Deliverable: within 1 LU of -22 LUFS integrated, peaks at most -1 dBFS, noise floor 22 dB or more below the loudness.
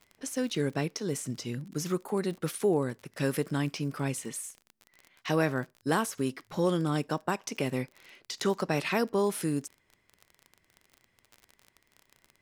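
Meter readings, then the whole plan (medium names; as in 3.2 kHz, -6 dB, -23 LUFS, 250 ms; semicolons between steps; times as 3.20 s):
tick rate 37 per s; loudness -31.5 LUFS; peak level -14.5 dBFS; loudness target -22.0 LUFS
-> de-click; trim +9.5 dB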